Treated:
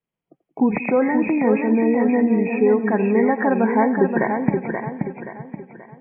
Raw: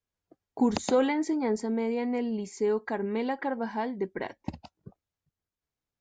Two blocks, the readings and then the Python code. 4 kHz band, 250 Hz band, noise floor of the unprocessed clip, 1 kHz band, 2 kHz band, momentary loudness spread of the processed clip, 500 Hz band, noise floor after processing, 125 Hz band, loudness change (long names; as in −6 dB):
below −25 dB, +11.5 dB, below −85 dBFS, +10.5 dB, +12.5 dB, 12 LU, +10.0 dB, −85 dBFS, +14.5 dB, +10.0 dB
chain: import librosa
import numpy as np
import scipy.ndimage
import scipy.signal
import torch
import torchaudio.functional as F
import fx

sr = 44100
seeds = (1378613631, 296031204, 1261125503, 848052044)

y = fx.freq_compress(x, sr, knee_hz=1800.0, ratio=4.0)
y = fx.spec_gate(y, sr, threshold_db=-30, keep='strong')
y = fx.echo_split(y, sr, split_hz=360.0, low_ms=188, high_ms=87, feedback_pct=52, wet_db=-16)
y = fx.rider(y, sr, range_db=4, speed_s=0.5)
y = fx.low_shelf_res(y, sr, hz=110.0, db=-9.0, q=3.0)
y = fx.env_lowpass(y, sr, base_hz=1200.0, full_db=-27.0)
y = fx.echo_warbled(y, sr, ms=528, feedback_pct=40, rate_hz=2.8, cents=58, wet_db=-5.5)
y = F.gain(torch.from_numpy(y), 8.5).numpy()